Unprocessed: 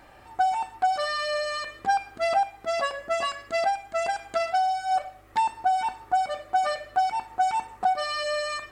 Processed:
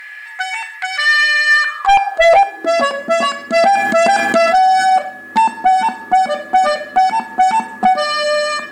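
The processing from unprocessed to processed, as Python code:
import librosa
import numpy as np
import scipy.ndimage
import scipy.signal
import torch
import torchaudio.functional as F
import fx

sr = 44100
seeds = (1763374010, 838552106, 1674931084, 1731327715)

y = fx.filter_sweep_highpass(x, sr, from_hz=2000.0, to_hz=220.0, start_s=1.46, end_s=2.89, q=7.7)
y = fx.fold_sine(y, sr, drive_db=8, ceiling_db=-5.5)
y = y + 10.0 ** (-32.0 / 20.0) * np.sin(2.0 * np.pi * 1700.0 * np.arange(len(y)) / sr)
y = fx.env_flatten(y, sr, amount_pct=70, at=(3.56, 4.9))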